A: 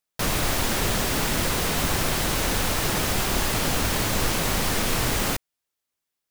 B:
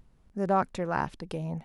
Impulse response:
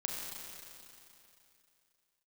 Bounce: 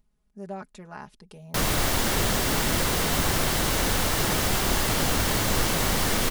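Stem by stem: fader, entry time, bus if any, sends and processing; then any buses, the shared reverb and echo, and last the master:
0.0 dB, 1.35 s, no send, band-stop 2.5 kHz, Q 21
-13.5 dB, 0.00 s, no send, treble shelf 4.1 kHz +9.5 dB; comb 4.8 ms, depth 79%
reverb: none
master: none

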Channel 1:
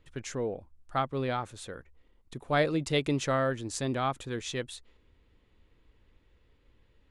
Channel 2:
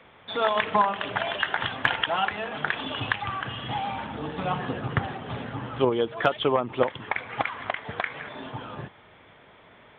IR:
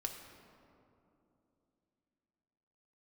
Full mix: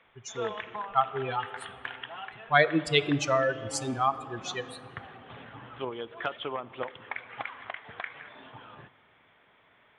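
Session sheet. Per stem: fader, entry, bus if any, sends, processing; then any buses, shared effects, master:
+1.0 dB, 0.00 s, send -4 dB, expander on every frequency bin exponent 3; high-pass 49 Hz
-16.5 dB, 0.00 s, send -11 dB, auto duck -9 dB, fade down 0.90 s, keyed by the first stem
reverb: on, RT60 2.9 s, pre-delay 3 ms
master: peaking EQ 2 kHz +7.5 dB 2.9 oct

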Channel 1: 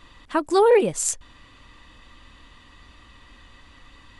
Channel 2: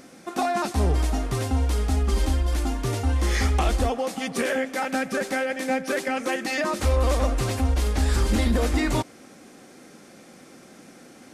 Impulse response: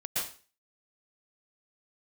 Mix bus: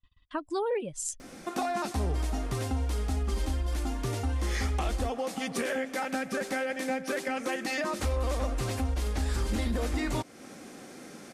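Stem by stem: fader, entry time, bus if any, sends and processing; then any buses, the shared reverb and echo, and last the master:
-4.5 dB, 0.00 s, no send, expander on every frequency bin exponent 1.5; gate -54 dBFS, range -23 dB
+1.5 dB, 1.20 s, no send, none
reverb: none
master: compression 2:1, threshold -34 dBFS, peak gain reduction 10 dB

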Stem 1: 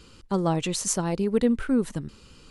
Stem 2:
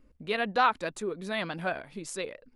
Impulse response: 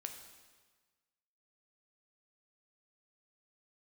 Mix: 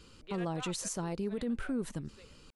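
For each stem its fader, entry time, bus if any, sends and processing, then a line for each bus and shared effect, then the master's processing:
-5.5 dB, 0.00 s, no send, none
-7.5 dB, 0.00 s, no send, high-pass 400 Hz; peak limiter -21 dBFS, peak gain reduction 9 dB; low-pass 4.8 kHz; auto duck -15 dB, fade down 1.85 s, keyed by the first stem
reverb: none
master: peak limiter -27 dBFS, peak gain reduction 11 dB

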